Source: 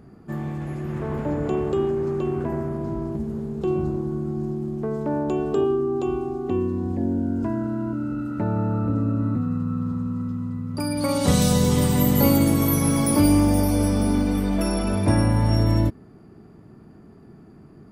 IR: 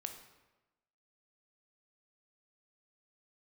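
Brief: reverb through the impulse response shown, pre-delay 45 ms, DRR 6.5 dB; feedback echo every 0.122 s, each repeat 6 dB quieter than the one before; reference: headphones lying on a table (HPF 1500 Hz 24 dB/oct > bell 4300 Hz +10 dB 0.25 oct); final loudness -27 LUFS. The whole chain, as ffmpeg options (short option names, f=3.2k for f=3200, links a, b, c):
-filter_complex "[0:a]aecho=1:1:122|244|366|488|610|732:0.501|0.251|0.125|0.0626|0.0313|0.0157,asplit=2[a][b];[1:a]atrim=start_sample=2205,adelay=45[c];[b][c]afir=irnorm=-1:irlink=0,volume=-4dB[d];[a][d]amix=inputs=2:normalize=0,highpass=f=1.5k:w=0.5412,highpass=f=1.5k:w=1.3066,equalizer=f=4.3k:t=o:w=0.25:g=10,volume=-0.5dB"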